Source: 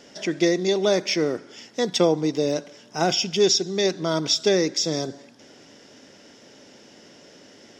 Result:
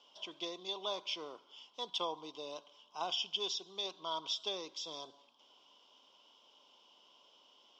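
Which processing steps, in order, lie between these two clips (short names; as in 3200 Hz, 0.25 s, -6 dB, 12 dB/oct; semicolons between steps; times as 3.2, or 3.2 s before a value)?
double band-pass 1800 Hz, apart 1.6 oct; gain -2.5 dB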